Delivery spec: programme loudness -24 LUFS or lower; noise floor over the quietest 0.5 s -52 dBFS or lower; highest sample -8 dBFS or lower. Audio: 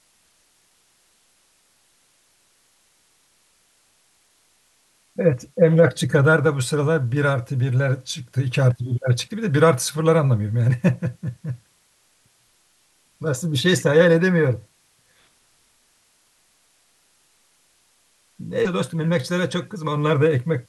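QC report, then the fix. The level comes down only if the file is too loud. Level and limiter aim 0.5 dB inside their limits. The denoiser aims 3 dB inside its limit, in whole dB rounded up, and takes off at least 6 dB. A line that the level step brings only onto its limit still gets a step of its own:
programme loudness -20.0 LUFS: fail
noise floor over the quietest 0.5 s -62 dBFS: pass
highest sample -3.5 dBFS: fail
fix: trim -4.5 dB; peak limiter -8.5 dBFS

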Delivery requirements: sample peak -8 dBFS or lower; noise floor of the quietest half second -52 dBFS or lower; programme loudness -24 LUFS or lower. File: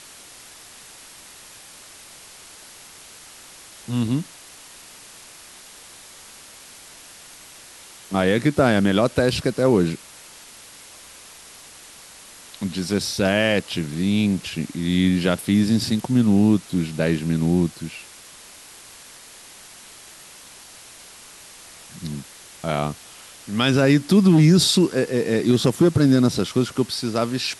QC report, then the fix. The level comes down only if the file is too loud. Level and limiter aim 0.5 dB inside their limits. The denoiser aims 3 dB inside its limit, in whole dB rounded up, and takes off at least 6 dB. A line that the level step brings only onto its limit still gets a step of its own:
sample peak -4.0 dBFS: fail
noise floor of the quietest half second -44 dBFS: fail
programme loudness -20.0 LUFS: fail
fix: noise reduction 7 dB, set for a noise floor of -44 dBFS; trim -4.5 dB

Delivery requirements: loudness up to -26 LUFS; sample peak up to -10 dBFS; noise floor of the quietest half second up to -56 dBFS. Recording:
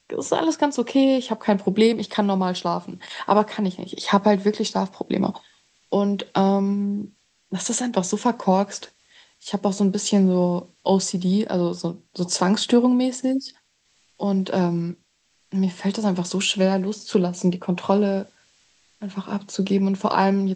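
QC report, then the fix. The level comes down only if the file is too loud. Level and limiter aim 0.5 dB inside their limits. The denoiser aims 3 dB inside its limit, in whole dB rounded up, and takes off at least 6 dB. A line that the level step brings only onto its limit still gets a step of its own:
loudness -22.5 LUFS: fail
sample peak -4.5 dBFS: fail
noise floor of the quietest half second -65 dBFS: pass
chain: trim -4 dB; peak limiter -10.5 dBFS

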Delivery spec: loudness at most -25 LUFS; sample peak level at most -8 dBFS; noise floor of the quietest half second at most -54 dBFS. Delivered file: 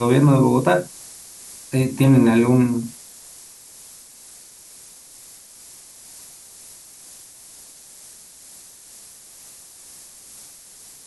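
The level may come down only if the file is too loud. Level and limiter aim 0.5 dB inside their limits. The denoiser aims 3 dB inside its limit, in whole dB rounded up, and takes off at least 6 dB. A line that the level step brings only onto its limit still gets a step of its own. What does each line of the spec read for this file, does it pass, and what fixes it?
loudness -17.0 LUFS: fail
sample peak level -5.0 dBFS: fail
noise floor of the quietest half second -44 dBFS: fail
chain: noise reduction 6 dB, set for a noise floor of -44 dBFS; trim -8.5 dB

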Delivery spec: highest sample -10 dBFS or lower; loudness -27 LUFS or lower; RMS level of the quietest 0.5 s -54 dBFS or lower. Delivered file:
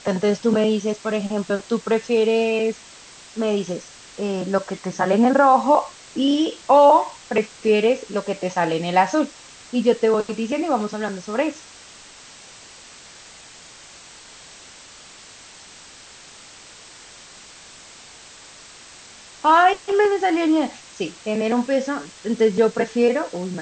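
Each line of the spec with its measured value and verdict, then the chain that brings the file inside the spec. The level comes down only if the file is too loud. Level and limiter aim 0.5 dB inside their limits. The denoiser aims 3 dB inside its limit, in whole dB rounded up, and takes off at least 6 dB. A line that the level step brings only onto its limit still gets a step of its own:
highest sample -4.5 dBFS: fail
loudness -20.5 LUFS: fail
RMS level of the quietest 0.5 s -44 dBFS: fail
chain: noise reduction 6 dB, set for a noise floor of -44 dBFS; trim -7 dB

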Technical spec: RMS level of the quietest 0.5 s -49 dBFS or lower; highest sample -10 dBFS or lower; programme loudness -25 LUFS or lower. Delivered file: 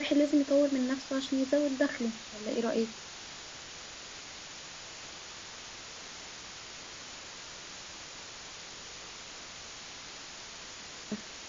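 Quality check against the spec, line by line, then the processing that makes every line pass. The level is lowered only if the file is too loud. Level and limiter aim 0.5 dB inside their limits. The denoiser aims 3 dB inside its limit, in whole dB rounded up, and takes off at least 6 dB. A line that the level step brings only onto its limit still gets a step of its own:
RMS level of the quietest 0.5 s -46 dBFS: fail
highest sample -15.0 dBFS: pass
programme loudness -35.5 LUFS: pass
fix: noise reduction 6 dB, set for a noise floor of -46 dBFS

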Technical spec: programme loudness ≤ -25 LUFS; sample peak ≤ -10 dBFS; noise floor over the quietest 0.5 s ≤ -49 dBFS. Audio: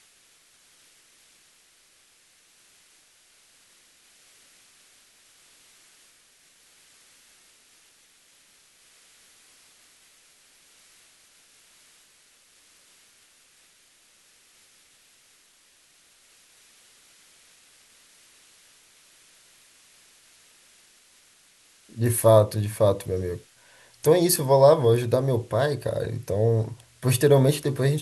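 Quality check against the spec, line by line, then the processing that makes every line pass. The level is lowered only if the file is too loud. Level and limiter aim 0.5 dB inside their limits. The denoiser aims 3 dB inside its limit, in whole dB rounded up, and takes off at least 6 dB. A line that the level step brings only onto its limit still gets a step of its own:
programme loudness -22.0 LUFS: fail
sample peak -5.0 dBFS: fail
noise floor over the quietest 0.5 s -60 dBFS: pass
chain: trim -3.5 dB; peak limiter -10.5 dBFS

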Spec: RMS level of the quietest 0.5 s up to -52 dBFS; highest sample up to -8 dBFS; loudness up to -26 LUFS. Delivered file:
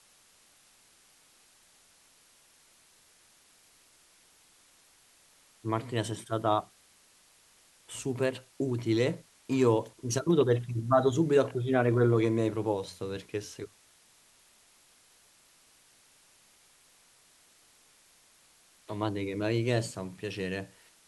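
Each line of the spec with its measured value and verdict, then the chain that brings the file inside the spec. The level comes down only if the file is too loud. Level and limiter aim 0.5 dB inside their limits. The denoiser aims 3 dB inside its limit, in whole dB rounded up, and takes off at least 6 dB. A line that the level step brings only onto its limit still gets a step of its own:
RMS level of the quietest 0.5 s -62 dBFS: pass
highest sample -11.5 dBFS: pass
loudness -29.5 LUFS: pass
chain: none needed

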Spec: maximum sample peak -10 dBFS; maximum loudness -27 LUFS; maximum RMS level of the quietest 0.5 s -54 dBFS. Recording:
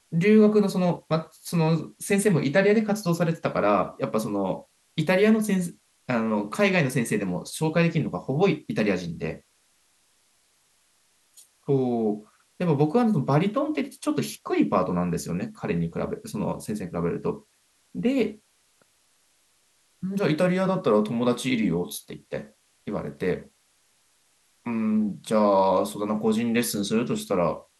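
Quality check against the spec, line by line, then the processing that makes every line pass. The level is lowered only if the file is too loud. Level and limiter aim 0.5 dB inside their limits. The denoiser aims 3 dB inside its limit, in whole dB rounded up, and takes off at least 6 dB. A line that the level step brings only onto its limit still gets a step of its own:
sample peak -8.0 dBFS: fail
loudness -25.0 LUFS: fail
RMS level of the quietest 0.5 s -65 dBFS: pass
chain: trim -2.5 dB

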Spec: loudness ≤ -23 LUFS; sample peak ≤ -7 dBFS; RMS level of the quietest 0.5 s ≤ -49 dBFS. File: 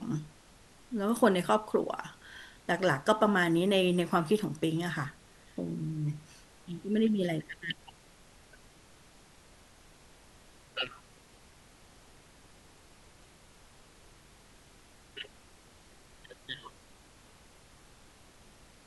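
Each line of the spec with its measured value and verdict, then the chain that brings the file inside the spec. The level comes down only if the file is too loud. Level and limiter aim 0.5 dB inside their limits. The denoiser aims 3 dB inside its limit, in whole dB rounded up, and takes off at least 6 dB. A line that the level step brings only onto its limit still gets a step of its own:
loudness -31.0 LUFS: pass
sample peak -9.5 dBFS: pass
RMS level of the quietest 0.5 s -58 dBFS: pass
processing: none needed

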